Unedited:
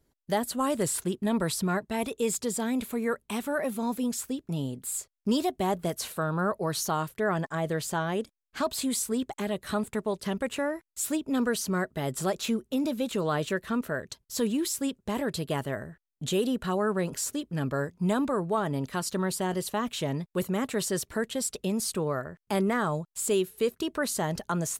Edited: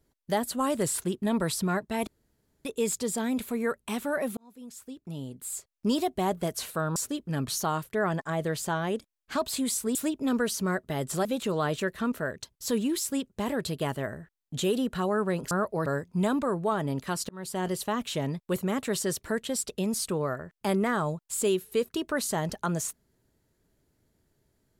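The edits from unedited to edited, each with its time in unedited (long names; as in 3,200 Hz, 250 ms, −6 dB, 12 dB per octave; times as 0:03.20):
0:02.07: splice in room tone 0.58 s
0:03.79–0:05.40: fade in
0:06.38–0:06.73: swap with 0:17.20–0:17.72
0:09.20–0:11.02: remove
0:12.32–0:12.94: remove
0:19.15–0:19.51: fade in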